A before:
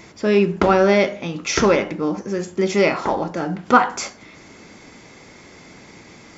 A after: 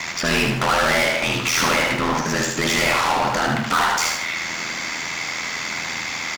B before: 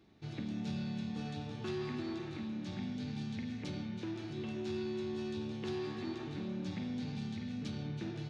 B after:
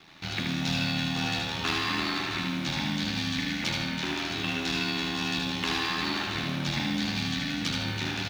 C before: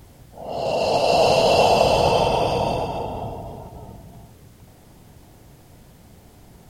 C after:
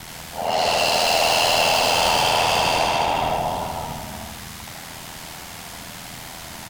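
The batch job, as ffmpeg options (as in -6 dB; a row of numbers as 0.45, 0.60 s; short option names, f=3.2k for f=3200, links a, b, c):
-filter_complex "[0:a]equalizer=f=410:t=o:w=1.5:g=-14,asplit=2[a][b];[b]highpass=f=720:p=1,volume=37dB,asoftclip=type=tanh:threshold=-4.5dB[c];[a][c]amix=inputs=2:normalize=0,lowpass=f=5.7k:p=1,volume=-6dB,asplit=2[d][e];[e]acrusher=bits=3:mode=log:mix=0:aa=0.000001,volume=-8.5dB[f];[d][f]amix=inputs=2:normalize=0,aeval=exprs='val(0)*sin(2*PI*41*n/s)':c=same,aecho=1:1:77|154|231|308|385:0.631|0.227|0.0818|0.0294|0.0106,volume=-8.5dB"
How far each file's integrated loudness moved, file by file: -1.0, +11.5, 0.0 LU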